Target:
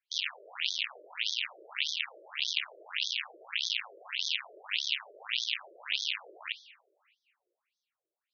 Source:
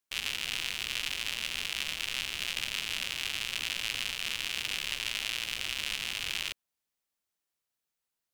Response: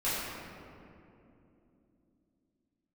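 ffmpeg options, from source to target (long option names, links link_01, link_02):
-filter_complex "[0:a]crystalizer=i=0.5:c=0,asplit=2[link_01][link_02];[1:a]atrim=start_sample=2205[link_03];[link_02][link_03]afir=irnorm=-1:irlink=0,volume=-22dB[link_04];[link_01][link_04]amix=inputs=2:normalize=0,afftfilt=real='re*between(b*sr/1024,450*pow(4700/450,0.5+0.5*sin(2*PI*1.7*pts/sr))/1.41,450*pow(4700/450,0.5+0.5*sin(2*PI*1.7*pts/sr))*1.41)':imag='im*between(b*sr/1024,450*pow(4700/450,0.5+0.5*sin(2*PI*1.7*pts/sr))/1.41,450*pow(4700/450,0.5+0.5*sin(2*PI*1.7*pts/sr))*1.41)':win_size=1024:overlap=0.75,volume=4.5dB"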